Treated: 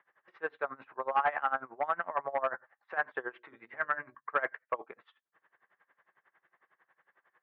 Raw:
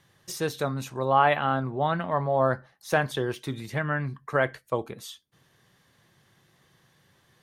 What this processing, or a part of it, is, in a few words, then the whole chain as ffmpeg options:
helicopter radio: -filter_complex "[0:a]highpass=380,lowpass=2800,aeval=exprs='val(0)*pow(10,-22*(0.5-0.5*cos(2*PI*11*n/s))/20)':c=same,asoftclip=type=hard:threshold=0.0708,lowpass=f=1800:w=0.5412,lowpass=f=1800:w=1.3066,asettb=1/sr,asplit=3[s0][s1][s2];[s0]atrim=end=3.334[s3];[s1]atrim=start=3.33:end=4.15,asetpts=PTS-STARTPTS,afade=t=in:d=0.004:c=qsin,afade=t=out:st=0.816:d=0.004:c=qsin,bandreject=f=60:t=h:w=6,bandreject=f=120:t=h:w=6,bandreject=f=180:t=h:w=6,bandreject=f=240:t=h:w=6,bandreject=f=300:t=h:w=6,bandreject=f=360:t=h:w=6,bandreject=f=420:t=h:w=6,bandreject=f=480:t=h:w=6,bandreject=f=540:t=h:w=6,bandreject=f=600:t=h:w=6[s4];[s2]atrim=start=4.146[s5];[s3][s4]acrossfade=d=0.004:c1=hsin:c2=qsin[s6];[s6][s5]acrossfade=d=0.004:c1=qsin:c2=hsin,tiltshelf=f=710:g=-10"

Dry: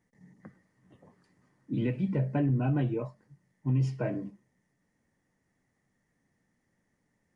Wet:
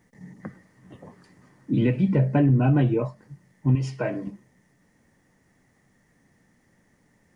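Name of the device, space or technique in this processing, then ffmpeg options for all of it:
parallel compression: -filter_complex "[0:a]asettb=1/sr,asplit=3[s0][s1][s2];[s0]atrim=end=3.754[s3];[s1]atrim=start=3.75:end=4.27,asetpts=PTS-STARTPTS,afade=t=in:d=0.004:c=qsin,afade=t=out:st=0.516:d=0.004:c=qsin,lowshelf=f=410:g=-10.5[s4];[s2]atrim=start=4.266[s5];[s3][s4]acrossfade=d=0.004:c1=hsin:c2=qsin[s6];[s6][s5]acrossfade=d=0.004:c1=qsin:c2=hsin,asplit=2[s7][s8];[s8]acompressor=threshold=0.00794:ratio=6,volume=0.891[s9];[s7][s9]amix=inputs=2:normalize=0,volume=2.24"

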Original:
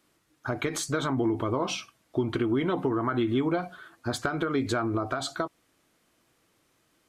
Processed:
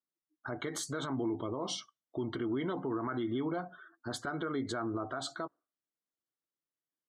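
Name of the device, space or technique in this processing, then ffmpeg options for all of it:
PA system with an anti-feedback notch: -filter_complex "[0:a]highpass=120,asuperstop=centerf=2500:order=8:qfactor=4.6,alimiter=limit=0.0944:level=0:latency=1:release=21,asettb=1/sr,asplit=3[s0][s1][s2];[s0]atrim=end=1.354[s3];[s1]atrim=start=1.35:end=1.8,asetpts=PTS-STARTPTS,afade=t=in:d=0.004:c=qsin,afade=t=out:st=0.446:d=0.004:c=qsin,equalizer=f=1600:t=o:w=0.67:g=-10,equalizer=f=4000:t=o:w=0.67:g=4,equalizer=f=10000:t=o:w=0.67:g=8[s4];[s2]atrim=start=1.796[s5];[s3][s4]acrossfade=d=0.004:c1=hsin:c2=qsin[s6];[s6][s5]acrossfade=d=0.004:c1=qsin:c2=hsin,afftdn=nr=27:nf=-50,volume=0.501"

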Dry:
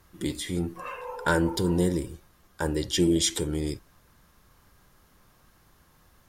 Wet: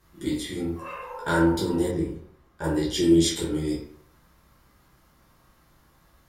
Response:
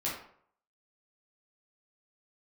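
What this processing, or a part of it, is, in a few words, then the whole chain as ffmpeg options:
bathroom: -filter_complex "[1:a]atrim=start_sample=2205[s0];[0:a][s0]afir=irnorm=-1:irlink=0,asettb=1/sr,asplit=3[s1][s2][s3];[s1]atrim=end=1.914[s4];[s2]atrim=start=1.91:end=2.64,asetpts=PTS-STARTPTS,afade=t=in:d=0.004:c=qsin,afade=t=out:st=0.726:d=0.004:c=qsin,highshelf=f=3300:g=-10.5[s5];[s3]atrim=start=2.636[s6];[s4][s5]acrossfade=d=0.004:c1=hsin:c2=qsin[s7];[s7][s6]acrossfade=d=0.004:c1=qsin:c2=hsin,volume=0.631"

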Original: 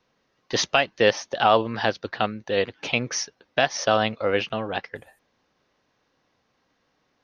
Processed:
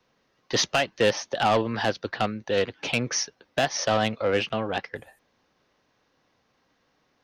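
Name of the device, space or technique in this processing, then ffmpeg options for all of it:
one-band saturation: -filter_complex "[0:a]acrossover=split=280|4700[s0][s1][s2];[s1]asoftclip=type=tanh:threshold=0.126[s3];[s0][s3][s2]amix=inputs=3:normalize=0,volume=1.12"

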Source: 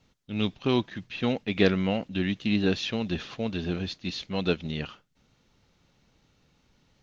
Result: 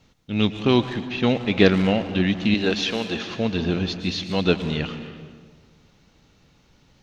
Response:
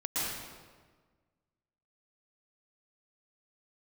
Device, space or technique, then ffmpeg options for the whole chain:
saturated reverb return: -filter_complex "[0:a]asettb=1/sr,asplit=3[s0][s1][s2];[s0]atrim=end=2.544[s3];[s1]atrim=start=2.54:end=3.27,asetpts=PTS-STARTPTS,afade=t=in:d=0.004:c=qsin,afade=t=out:st=0.726:d=0.004:c=qsin,bass=f=250:g=-12,treble=f=4000:g=1[s4];[s2]atrim=start=3.266[s5];[s3][s4]acrossfade=d=0.004:c1=hsin:c2=qsin[s6];[s6][s5]acrossfade=d=0.004:c1=qsin:c2=hsin,asplit=2[s7][s8];[1:a]atrim=start_sample=2205[s9];[s8][s9]afir=irnorm=-1:irlink=0,asoftclip=type=tanh:threshold=0.0891,volume=0.237[s10];[s7][s10]amix=inputs=2:normalize=0,volume=1.88"

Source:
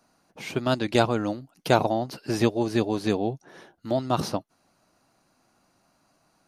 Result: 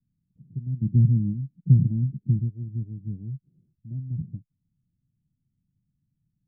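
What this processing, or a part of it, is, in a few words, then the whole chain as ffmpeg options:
the neighbour's flat through the wall: -filter_complex "[0:a]lowpass=f=160:w=0.5412,lowpass=f=160:w=1.3066,equalizer=f=130:t=o:w=0.82:g=4,asplit=3[s0][s1][s2];[s0]afade=t=out:st=0.81:d=0.02[s3];[s1]equalizer=f=190:t=o:w=2.1:g=15,afade=t=in:st=0.81:d=0.02,afade=t=out:st=2.38:d=0.02[s4];[s2]afade=t=in:st=2.38:d=0.02[s5];[s3][s4][s5]amix=inputs=3:normalize=0"

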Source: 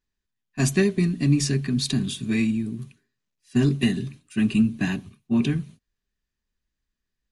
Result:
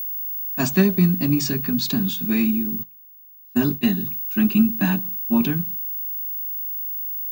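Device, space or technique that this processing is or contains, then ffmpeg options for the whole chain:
old television with a line whistle: -filter_complex "[0:a]highpass=f=170:w=0.5412,highpass=f=170:w=1.3066,equalizer=f=180:t=q:w=4:g=7,equalizer=f=400:t=q:w=4:g=-3,equalizer=f=610:t=q:w=4:g=5,equalizer=f=900:t=q:w=4:g=9,equalizer=f=1400:t=q:w=4:g=7,equalizer=f=2000:t=q:w=4:g=-6,lowpass=f=7100:w=0.5412,lowpass=f=7100:w=1.3066,aeval=exprs='val(0)+0.0447*sin(2*PI*15625*n/s)':c=same,asplit=3[s0][s1][s2];[s0]afade=t=out:st=2.82:d=0.02[s3];[s1]agate=range=0.0224:threshold=0.112:ratio=3:detection=peak,afade=t=in:st=2.82:d=0.02,afade=t=out:st=3.99:d=0.02[s4];[s2]afade=t=in:st=3.99:d=0.02[s5];[s3][s4][s5]amix=inputs=3:normalize=0,volume=1.19"

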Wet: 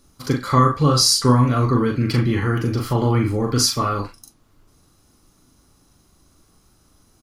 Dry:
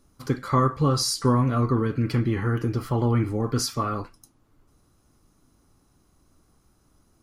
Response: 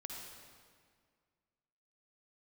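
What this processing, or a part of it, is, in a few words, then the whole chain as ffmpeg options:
presence and air boost: -filter_complex "[0:a]equalizer=f=4200:t=o:w=1.7:g=5.5,highshelf=f=9400:g=5,asplit=2[s0][s1];[s1]adelay=40,volume=0.596[s2];[s0][s2]amix=inputs=2:normalize=0,volume=1.5"

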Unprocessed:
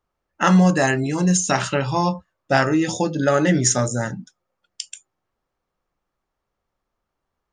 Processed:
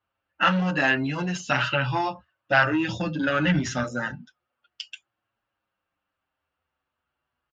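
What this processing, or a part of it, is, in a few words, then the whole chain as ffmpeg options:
barber-pole flanger into a guitar amplifier: -filter_complex "[0:a]asplit=2[s0][s1];[s1]adelay=7,afreqshift=-0.35[s2];[s0][s2]amix=inputs=2:normalize=1,asoftclip=type=tanh:threshold=0.188,highpass=76,equalizer=f=77:t=q:w=4:g=4,equalizer=f=180:t=q:w=4:g=-6,equalizer=f=410:t=q:w=4:g=-8,equalizer=f=1500:t=q:w=4:g=8,equalizer=f=2800:t=q:w=4:g=10,lowpass=f=4500:w=0.5412,lowpass=f=4500:w=1.3066,asplit=3[s3][s4][s5];[s3]afade=t=out:st=2.72:d=0.02[s6];[s4]asubboost=boost=5:cutoff=170,afade=t=in:st=2.72:d=0.02,afade=t=out:st=3.83:d=0.02[s7];[s5]afade=t=in:st=3.83:d=0.02[s8];[s6][s7][s8]amix=inputs=3:normalize=0"

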